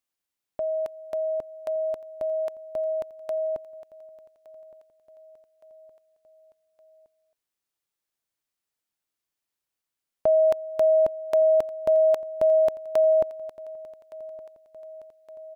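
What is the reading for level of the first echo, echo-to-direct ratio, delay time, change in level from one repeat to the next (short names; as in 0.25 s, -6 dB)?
-20.5 dB, -19.0 dB, 1.166 s, -4.5 dB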